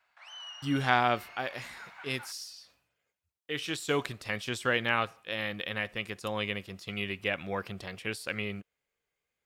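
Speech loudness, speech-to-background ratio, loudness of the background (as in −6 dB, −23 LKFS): −32.5 LKFS, 13.5 dB, −46.0 LKFS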